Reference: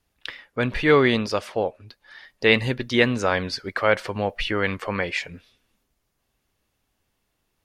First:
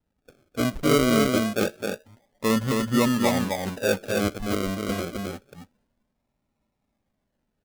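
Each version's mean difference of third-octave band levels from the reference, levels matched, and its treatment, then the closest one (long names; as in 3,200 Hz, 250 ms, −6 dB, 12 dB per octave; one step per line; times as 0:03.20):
12.0 dB: Chebyshev low-pass with heavy ripple 850 Hz, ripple 9 dB
sample-and-hold swept by an LFO 39×, swing 60% 0.27 Hz
single-tap delay 263 ms −3.5 dB
level +3.5 dB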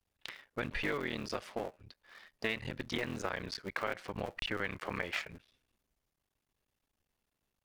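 7.5 dB: sub-harmonics by changed cycles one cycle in 3, muted
downward compressor 10 to 1, threshold −24 dBFS, peak gain reduction 13 dB
dynamic equaliser 1,900 Hz, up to +4 dB, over −39 dBFS, Q 0.82
level −9 dB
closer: second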